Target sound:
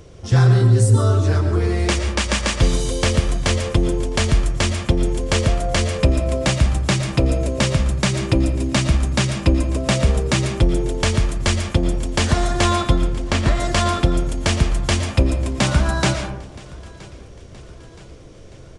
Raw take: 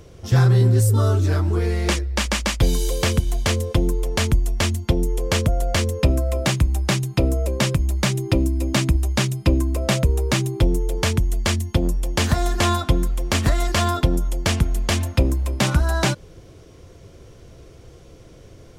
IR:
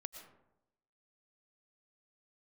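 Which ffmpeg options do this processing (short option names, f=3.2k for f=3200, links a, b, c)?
-filter_complex "[0:a]asettb=1/sr,asplit=3[a][b][c];[a]atrim=end=12.964[d];[b]atrim=start=12.96:end=13.6,asetpts=PTS-STARTPTS,afade=t=in:d=0.004:c=qsin,afade=t=out:st=0.636:d=0.004:c=qsin,highshelf=f=6.7k:g=-11[e];[c]atrim=start=13.596[f];[d][e]acrossfade=d=0.004:c1=hsin:c2=qsin[g];[g][f]acrossfade=d=0.004:c1=qsin:c2=hsin,aecho=1:1:972|1944|2916|3888:0.075|0.0405|0.0219|0.0118[h];[1:a]atrim=start_sample=2205[i];[h][i]afir=irnorm=-1:irlink=0,aresample=22050,aresample=44100,volume=6dB"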